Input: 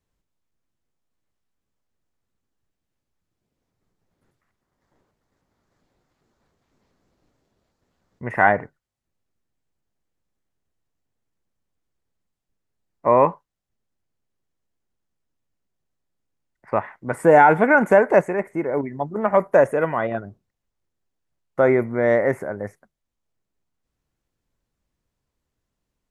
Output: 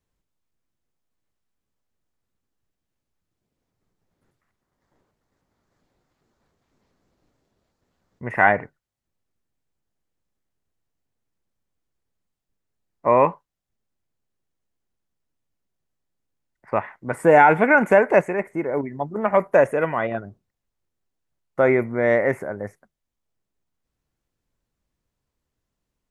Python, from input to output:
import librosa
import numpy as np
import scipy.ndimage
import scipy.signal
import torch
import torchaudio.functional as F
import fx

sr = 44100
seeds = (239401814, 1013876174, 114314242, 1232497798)

y = fx.dynamic_eq(x, sr, hz=2500.0, q=2.0, threshold_db=-39.0, ratio=4.0, max_db=7)
y = y * librosa.db_to_amplitude(-1.0)